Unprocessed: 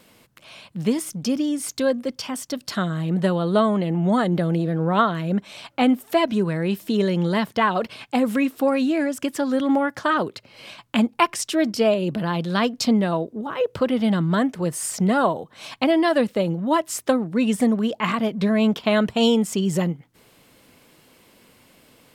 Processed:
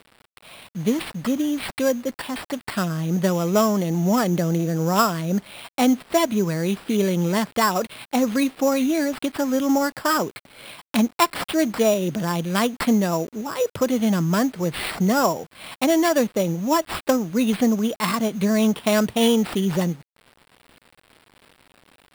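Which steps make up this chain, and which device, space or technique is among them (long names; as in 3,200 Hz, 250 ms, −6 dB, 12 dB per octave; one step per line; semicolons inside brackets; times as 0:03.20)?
early 8-bit sampler (sample-rate reduction 6,400 Hz, jitter 0%; bit reduction 8 bits)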